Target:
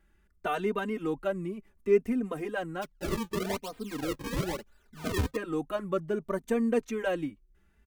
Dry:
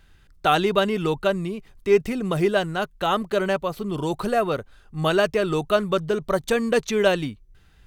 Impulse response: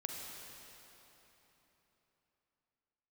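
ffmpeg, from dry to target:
-filter_complex "[0:a]equalizer=f=125:t=o:w=1:g=-8,equalizer=f=250:t=o:w=1:g=9,equalizer=f=2k:t=o:w=1:g=3,equalizer=f=4k:t=o:w=1:g=-11,asplit=3[a][b][c];[a]afade=t=out:st=2.81:d=0.02[d];[b]acrusher=samples=36:mix=1:aa=0.000001:lfo=1:lforange=57.6:lforate=1,afade=t=in:st=2.81:d=0.02,afade=t=out:st=5.35:d=0.02[e];[c]afade=t=in:st=5.35:d=0.02[f];[d][e][f]amix=inputs=3:normalize=0,asplit=2[g][h];[h]adelay=3.1,afreqshift=0.67[i];[g][i]amix=inputs=2:normalize=1,volume=-8dB"

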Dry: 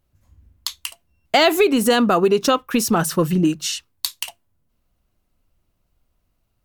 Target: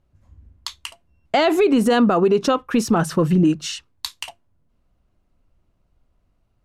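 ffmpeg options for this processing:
-af "lowpass=9.6k,highshelf=f=2.3k:g=-10,alimiter=level_in=12dB:limit=-1dB:release=50:level=0:latency=1,volume=-8dB"

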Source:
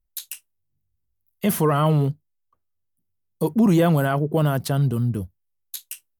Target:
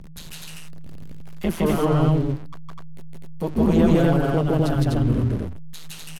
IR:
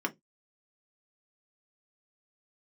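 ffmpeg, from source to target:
-filter_complex "[0:a]aeval=exprs='val(0)+0.5*0.0335*sgn(val(0))':c=same,tremolo=f=160:d=0.857,aemphasis=mode=reproduction:type=50fm,acrossover=split=590|2500[a][b][c];[b]alimiter=level_in=1dB:limit=-24dB:level=0:latency=1:release=275,volume=-1dB[d];[a][d][c]amix=inputs=3:normalize=0,bandreject=f=145.3:t=h:w=4,bandreject=f=290.6:t=h:w=4,asplit=2[e][f];[f]aecho=0:1:160.3|250.7:1|0.891[g];[e][g]amix=inputs=2:normalize=0"

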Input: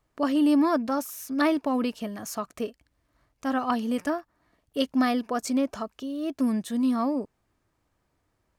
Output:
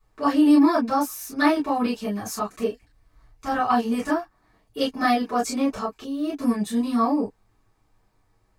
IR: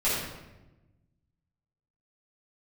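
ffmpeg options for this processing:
-filter_complex "[0:a]asettb=1/sr,asplit=3[a][b][c];[a]atrim=end=2.614[d];[b]atrim=start=2.61:end=3.57,asetpts=PTS-STARTPTS,afade=t=in:d=0.004:c=qsin,afade=t=out:st=0.956:d=0.004:c=qsin,asubboost=boost=8.5:cutoff=110[e];[c]atrim=start=3.566[f];[d][e]acrossfade=d=0.004:c1=hsin:c2=qsin[g];[g][f]acrossfade=d=0.004:c1=qsin:c2=hsin[h];[1:a]atrim=start_sample=2205,atrim=end_sample=4410,asetrate=83790,aresample=44100[i];[h][i]afir=irnorm=-1:irlink=0"

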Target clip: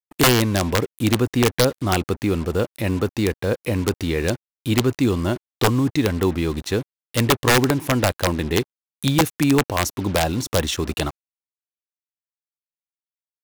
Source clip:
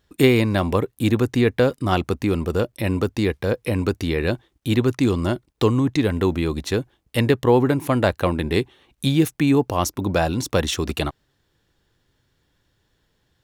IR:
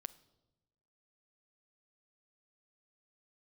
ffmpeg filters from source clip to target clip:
-af "aeval=exprs='(mod(2.82*val(0)+1,2)-1)/2.82':c=same,acrusher=bits=5:mix=0:aa=0.5"

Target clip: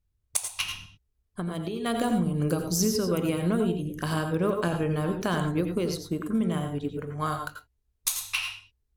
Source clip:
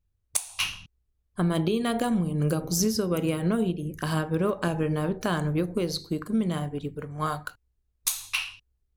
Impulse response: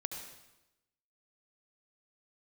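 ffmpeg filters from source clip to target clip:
-filter_complex "[0:a]asettb=1/sr,asplit=3[a][b][c];[a]atrim=end=0.614[d];[b]atrim=start=0.61:end=1.86,asetpts=PTS-STARTPTS,afade=t=in:d=0.004:c=qsin,afade=t=out:st=1.246:d=0.004:c=qsin,acompressor=threshold=-31dB:ratio=3[e];[c]atrim=start=1.856[f];[d][e]acrossfade=d=0.004:c1=hsin:c2=qsin[g];[g][f]acrossfade=d=0.004:c1=qsin:c2=hsin,asettb=1/sr,asplit=3[h][i][j];[h]atrim=end=5.944[k];[i]atrim=start=5.94:end=6.67,asetpts=PTS-STARTPTS,afade=t=in:d=0.004:c=qsin,afade=t=out:st=0.726:d=0.004:c=qsin,equalizer=f=4.4k:t=o:w=0.29:g=-14[l];[j]atrim=start=6.666[m];[k][l]acrossfade=d=0.004:c1=hsin:c2=qsin[n];[n][m]acrossfade=d=0.004:c1=qsin:c2=hsin[o];[1:a]atrim=start_sample=2205,afade=t=out:st=0.14:d=0.01,atrim=end_sample=6615,asetrate=35721,aresample=44100[p];[o][p]afir=irnorm=-1:irlink=0"

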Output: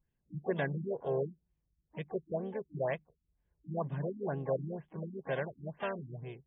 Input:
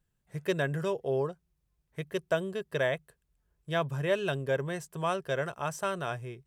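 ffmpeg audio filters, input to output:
-filter_complex "[0:a]asplit=4[a][b][c][d];[b]asetrate=52444,aresample=44100,atempo=0.840896,volume=-10dB[e];[c]asetrate=58866,aresample=44100,atempo=0.749154,volume=-15dB[f];[d]asetrate=88200,aresample=44100,atempo=0.5,volume=-15dB[g];[a][e][f][g]amix=inputs=4:normalize=0,bandreject=f=1.3k:w=5.2,afftfilt=real='re*lt(b*sr/1024,330*pow(3700/330,0.5+0.5*sin(2*PI*2.1*pts/sr)))':imag='im*lt(b*sr/1024,330*pow(3700/330,0.5+0.5*sin(2*PI*2.1*pts/sr)))':win_size=1024:overlap=0.75,volume=-4dB"

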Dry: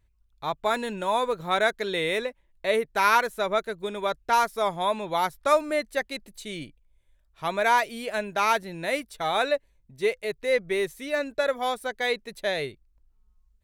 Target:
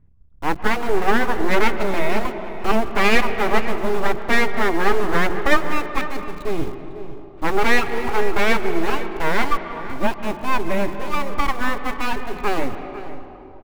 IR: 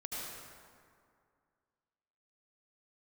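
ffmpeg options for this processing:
-filter_complex "[0:a]lowpass=1.4k,lowshelf=f=250:t=q:w=3:g=8.5,bandreject=f=60:t=h:w=6,bandreject=f=120:t=h:w=6,bandreject=f=180:t=h:w=6,bandreject=f=240:t=h:w=6,asplit=2[a][b];[b]acrusher=bits=6:mix=0:aa=0.000001,volume=-3dB[c];[a][c]amix=inputs=2:normalize=0,aeval=exprs='abs(val(0))':c=same,asplit=2[d][e];[e]adelay=501.5,volume=-13dB,highshelf=f=4k:g=-11.3[f];[d][f]amix=inputs=2:normalize=0,asplit=2[g][h];[1:a]atrim=start_sample=2205,asetrate=25578,aresample=44100,lowpass=3.1k[i];[h][i]afir=irnorm=-1:irlink=0,volume=-12.5dB[j];[g][j]amix=inputs=2:normalize=0,volume=4dB"

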